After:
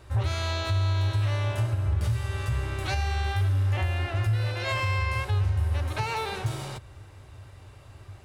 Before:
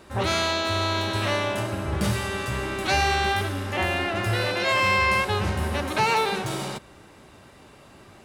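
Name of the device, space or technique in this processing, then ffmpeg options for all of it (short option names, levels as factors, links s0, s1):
car stereo with a boomy subwoofer: -af "lowshelf=f=140:t=q:w=3:g=10.5,alimiter=limit=0.211:level=0:latency=1:release=481,volume=0.596"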